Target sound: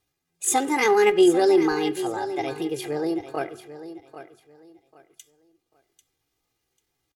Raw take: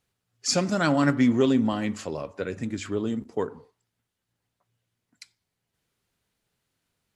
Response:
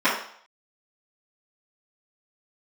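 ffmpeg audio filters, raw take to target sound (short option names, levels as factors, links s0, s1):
-af "aecho=1:1:3.6:0.76,asetrate=64194,aresample=44100,atempo=0.686977,aecho=1:1:793|1586|2379:0.224|0.056|0.014"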